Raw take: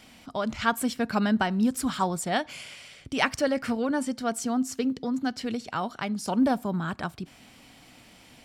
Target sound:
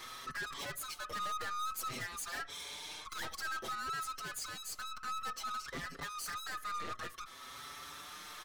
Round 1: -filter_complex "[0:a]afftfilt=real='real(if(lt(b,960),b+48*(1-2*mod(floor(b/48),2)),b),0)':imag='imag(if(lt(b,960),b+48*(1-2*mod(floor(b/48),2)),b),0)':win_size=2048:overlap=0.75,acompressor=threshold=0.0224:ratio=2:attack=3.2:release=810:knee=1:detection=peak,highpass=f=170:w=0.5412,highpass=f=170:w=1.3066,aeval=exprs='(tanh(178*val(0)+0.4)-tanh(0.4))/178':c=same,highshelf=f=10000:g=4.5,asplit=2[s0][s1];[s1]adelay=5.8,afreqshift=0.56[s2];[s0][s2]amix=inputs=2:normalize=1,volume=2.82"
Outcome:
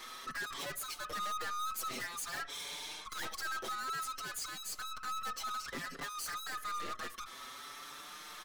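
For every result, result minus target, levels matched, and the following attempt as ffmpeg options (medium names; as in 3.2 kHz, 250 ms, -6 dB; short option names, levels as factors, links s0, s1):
125 Hz band -4.5 dB; compression: peak gain reduction -3.5 dB
-filter_complex "[0:a]afftfilt=real='real(if(lt(b,960),b+48*(1-2*mod(floor(b/48),2)),b),0)':imag='imag(if(lt(b,960),b+48*(1-2*mod(floor(b/48),2)),b),0)':win_size=2048:overlap=0.75,acompressor=threshold=0.0224:ratio=2:attack=3.2:release=810:knee=1:detection=peak,highpass=f=48:w=0.5412,highpass=f=48:w=1.3066,aeval=exprs='(tanh(178*val(0)+0.4)-tanh(0.4))/178':c=same,highshelf=f=10000:g=4.5,asplit=2[s0][s1];[s1]adelay=5.8,afreqshift=0.56[s2];[s0][s2]amix=inputs=2:normalize=1,volume=2.82"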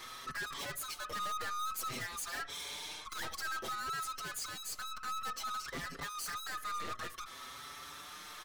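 compression: peak gain reduction -3.5 dB
-filter_complex "[0:a]afftfilt=real='real(if(lt(b,960),b+48*(1-2*mod(floor(b/48),2)),b),0)':imag='imag(if(lt(b,960),b+48*(1-2*mod(floor(b/48),2)),b),0)':win_size=2048:overlap=0.75,acompressor=threshold=0.01:ratio=2:attack=3.2:release=810:knee=1:detection=peak,highpass=f=48:w=0.5412,highpass=f=48:w=1.3066,aeval=exprs='(tanh(178*val(0)+0.4)-tanh(0.4))/178':c=same,highshelf=f=10000:g=4.5,asplit=2[s0][s1];[s1]adelay=5.8,afreqshift=0.56[s2];[s0][s2]amix=inputs=2:normalize=1,volume=2.82"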